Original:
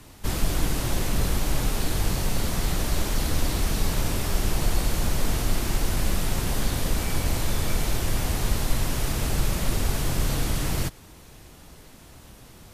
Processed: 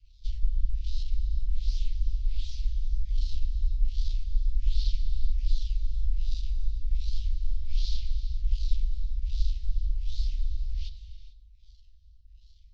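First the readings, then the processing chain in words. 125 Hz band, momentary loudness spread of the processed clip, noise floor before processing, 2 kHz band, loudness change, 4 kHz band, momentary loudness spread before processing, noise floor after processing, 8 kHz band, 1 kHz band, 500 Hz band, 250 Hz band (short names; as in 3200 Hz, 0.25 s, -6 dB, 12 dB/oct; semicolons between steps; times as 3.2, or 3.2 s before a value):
-7.0 dB, 4 LU, -48 dBFS, -29.0 dB, -6.5 dB, -13.5 dB, 1 LU, -53 dBFS, -27.0 dB, under -40 dB, under -40 dB, under -30 dB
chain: decimation with a swept rate 23×, swing 160% 0.35 Hz; LPF 5900 Hz 24 dB/oct; LFO low-pass sine 1.3 Hz 830–4000 Hz; inverse Chebyshev band-stop 210–1300 Hz, stop band 70 dB; non-linear reverb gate 0.47 s flat, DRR 9.5 dB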